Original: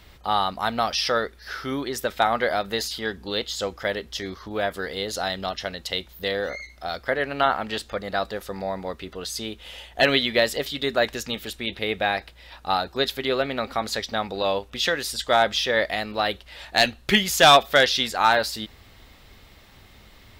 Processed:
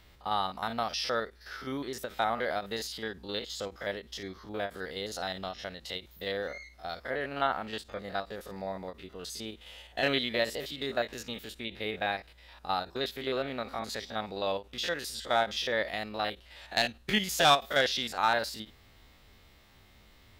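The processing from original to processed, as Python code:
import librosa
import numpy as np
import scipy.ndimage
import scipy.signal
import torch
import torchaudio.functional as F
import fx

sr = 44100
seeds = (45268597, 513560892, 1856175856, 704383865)

y = fx.spec_steps(x, sr, hold_ms=50)
y = fx.end_taper(y, sr, db_per_s=300.0)
y = y * librosa.db_to_amplitude(-7.0)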